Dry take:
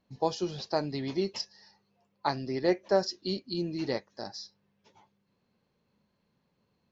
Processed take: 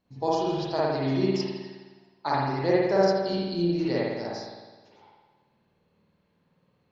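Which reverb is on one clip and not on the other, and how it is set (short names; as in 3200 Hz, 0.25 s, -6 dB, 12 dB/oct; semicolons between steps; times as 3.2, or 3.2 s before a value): spring tank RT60 1.3 s, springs 52 ms, chirp 35 ms, DRR -7 dB; gain -2 dB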